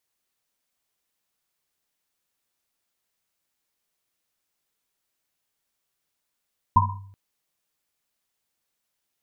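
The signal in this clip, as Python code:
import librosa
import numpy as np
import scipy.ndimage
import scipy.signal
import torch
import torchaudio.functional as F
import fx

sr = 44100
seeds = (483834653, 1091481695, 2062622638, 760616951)

y = fx.risset_drum(sr, seeds[0], length_s=0.38, hz=98.0, decay_s=0.8, noise_hz=990.0, noise_width_hz=100.0, noise_pct=50)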